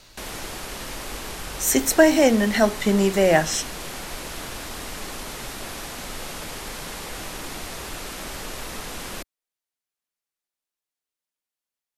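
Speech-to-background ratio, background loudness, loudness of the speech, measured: 14.5 dB, −33.5 LKFS, −19.0 LKFS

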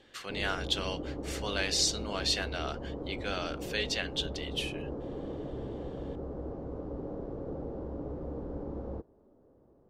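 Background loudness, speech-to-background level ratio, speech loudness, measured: −40.0 LKFS, 7.0 dB, −33.0 LKFS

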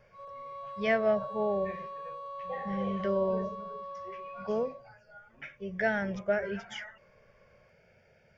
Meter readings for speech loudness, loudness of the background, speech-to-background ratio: −32.5 LKFS, −41.5 LKFS, 9.0 dB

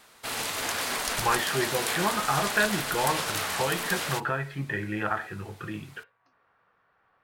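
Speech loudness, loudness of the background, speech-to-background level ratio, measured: −30.0 LKFS, −29.5 LKFS, −0.5 dB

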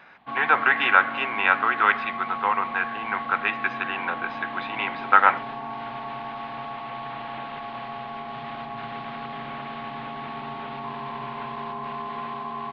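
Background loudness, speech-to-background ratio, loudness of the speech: −33.5 LKFS, 10.5 dB, −23.0 LKFS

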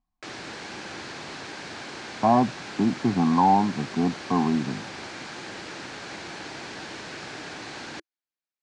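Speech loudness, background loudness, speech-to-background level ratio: −23.5 LKFS, −37.0 LKFS, 13.5 dB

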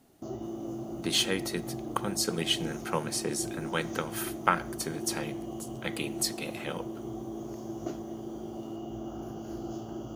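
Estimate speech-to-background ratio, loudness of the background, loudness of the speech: 7.0 dB, −39.0 LKFS, −32.0 LKFS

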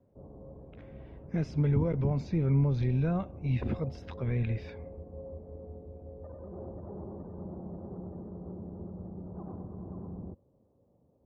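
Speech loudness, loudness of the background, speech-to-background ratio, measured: −30.5 LKFS, −45.0 LKFS, 14.5 dB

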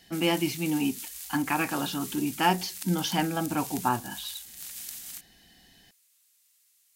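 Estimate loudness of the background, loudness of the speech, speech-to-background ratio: −38.5 LKFS, −29.0 LKFS, 9.5 dB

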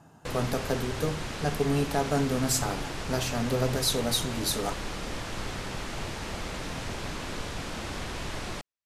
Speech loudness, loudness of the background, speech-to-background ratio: −29.5 LKFS, −36.0 LKFS, 6.5 dB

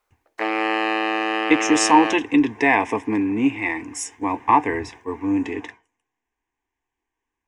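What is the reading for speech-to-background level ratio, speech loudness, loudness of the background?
2.5 dB, −20.5 LKFS, −23.0 LKFS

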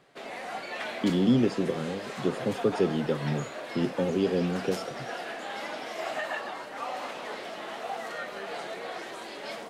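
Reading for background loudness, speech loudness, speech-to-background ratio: −37.0 LKFS, −28.5 LKFS, 8.5 dB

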